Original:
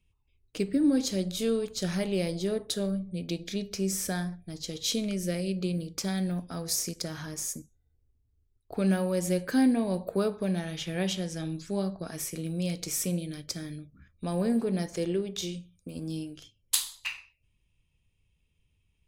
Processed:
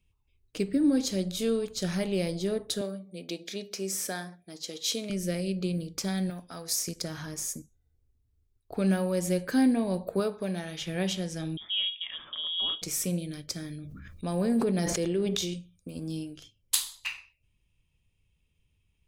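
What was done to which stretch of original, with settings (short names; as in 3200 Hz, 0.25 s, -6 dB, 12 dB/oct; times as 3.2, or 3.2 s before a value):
2.81–5.1 HPF 310 Hz
6.3–6.88 low shelf 380 Hz -11 dB
10.2–10.83 low shelf 180 Hz -8.5 dB
11.57–12.82 inverted band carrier 3500 Hz
13.78–15.54 sustainer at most 21 dB/s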